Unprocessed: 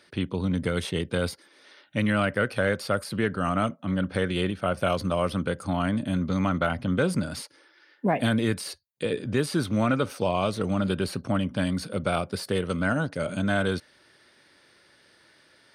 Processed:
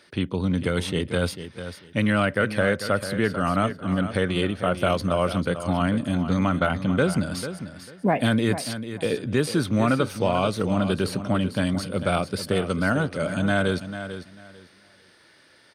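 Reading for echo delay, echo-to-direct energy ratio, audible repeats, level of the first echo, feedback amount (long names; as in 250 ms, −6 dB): 445 ms, −11.0 dB, 2, −11.0 dB, 21%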